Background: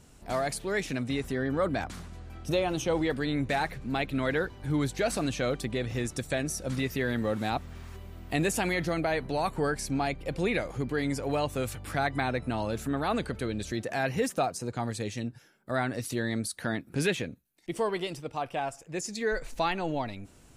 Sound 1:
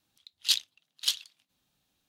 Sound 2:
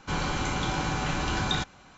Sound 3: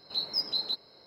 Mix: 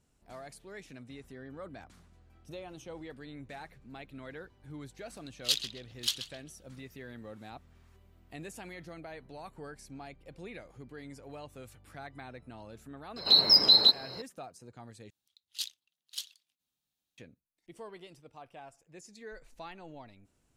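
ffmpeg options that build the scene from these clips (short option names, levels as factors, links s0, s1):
-filter_complex "[1:a]asplit=2[s0][s1];[0:a]volume=0.141[s2];[s0]asplit=2[s3][s4];[s4]adelay=131,lowpass=f=2700:p=1,volume=0.447,asplit=2[s5][s6];[s6]adelay=131,lowpass=f=2700:p=1,volume=0.39,asplit=2[s7][s8];[s8]adelay=131,lowpass=f=2700:p=1,volume=0.39,asplit=2[s9][s10];[s10]adelay=131,lowpass=f=2700:p=1,volume=0.39,asplit=2[s11][s12];[s12]adelay=131,lowpass=f=2700:p=1,volume=0.39[s13];[s3][s5][s7][s9][s11][s13]amix=inputs=6:normalize=0[s14];[3:a]alimiter=level_in=14.1:limit=0.891:release=50:level=0:latency=1[s15];[s1]highshelf=f=4100:g=8.5[s16];[s2]asplit=2[s17][s18];[s17]atrim=end=15.104[s19];[s16]atrim=end=2.08,asetpts=PTS-STARTPTS,volume=0.158[s20];[s18]atrim=start=17.176[s21];[s14]atrim=end=2.08,asetpts=PTS-STARTPTS,volume=0.668,afade=t=in:d=0.004:c=hsin,afade=t=out:st=2.076:d=0.004:c=hsin,adelay=5000[s22];[s15]atrim=end=1.06,asetpts=PTS-STARTPTS,volume=0.299,afade=t=in:d=0.004:c=hsin,afade=t=out:st=1.056:d=0.004:c=hsin,adelay=580356S[s23];[s19][s20]acrossfade=d=0.004:c1=hsin:c2=hsin[s24];[s24][s21]acrossfade=d=0.004:c1=hsin:c2=hsin[s25];[s25][s22][s23]amix=inputs=3:normalize=0"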